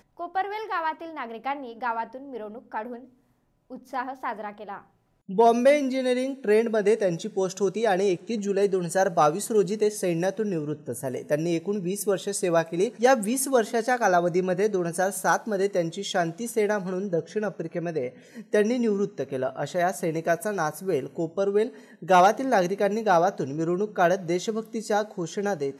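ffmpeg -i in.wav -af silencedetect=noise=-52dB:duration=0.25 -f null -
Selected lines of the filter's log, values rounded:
silence_start: 3.14
silence_end: 3.70 | silence_duration: 0.57
silence_start: 4.87
silence_end: 5.29 | silence_duration: 0.41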